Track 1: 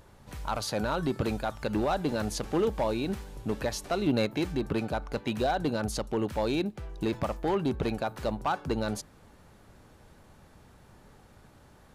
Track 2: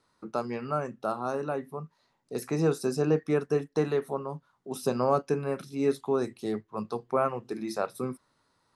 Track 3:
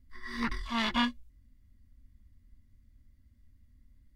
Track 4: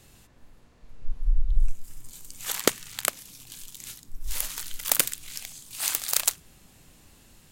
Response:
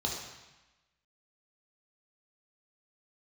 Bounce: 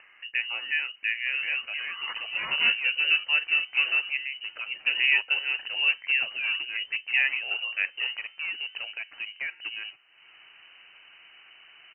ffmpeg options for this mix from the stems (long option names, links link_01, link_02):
-filter_complex "[0:a]adelay=950,volume=-4.5dB[link_01];[1:a]volume=2.5dB[link_02];[2:a]acontrast=51,adelay=1650,volume=-9dB[link_03];[link_01][link_02][link_03]amix=inputs=3:normalize=0,highpass=frequency=210:poles=1,acompressor=mode=upward:threshold=-41dB:ratio=2.5,lowpass=frequency=2600:width_type=q:width=0.5098,lowpass=frequency=2600:width_type=q:width=0.6013,lowpass=frequency=2600:width_type=q:width=0.9,lowpass=frequency=2600:width_type=q:width=2.563,afreqshift=-3100"